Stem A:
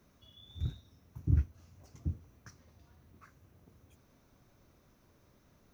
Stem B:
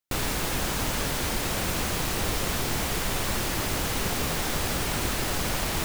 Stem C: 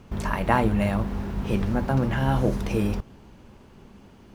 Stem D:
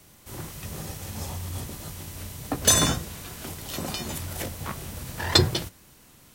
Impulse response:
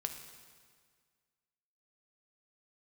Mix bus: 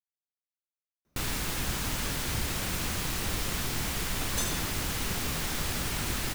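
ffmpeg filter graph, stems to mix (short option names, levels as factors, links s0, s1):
-filter_complex "[0:a]adelay=1050,volume=0.376[s0];[1:a]equalizer=f=580:w=0.82:g=-6,adelay=1050,volume=0.708[s1];[3:a]adelay=1700,volume=0.168[s2];[s0][s1][s2]amix=inputs=3:normalize=0"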